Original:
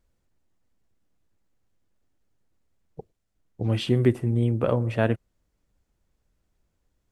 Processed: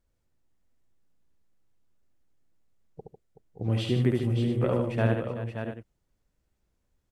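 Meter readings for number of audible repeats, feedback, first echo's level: 5, no regular repeats, -3.5 dB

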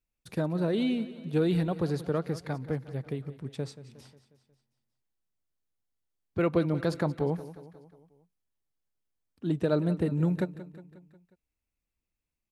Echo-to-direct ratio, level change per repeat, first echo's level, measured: -14.0 dB, -5.0 dB, -15.5 dB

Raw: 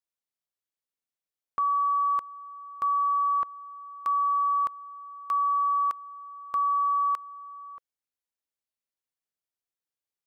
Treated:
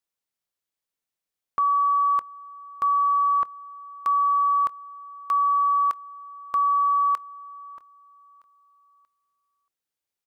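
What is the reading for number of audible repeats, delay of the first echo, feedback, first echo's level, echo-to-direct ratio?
2, 633 ms, 42%, -22.5 dB, -21.5 dB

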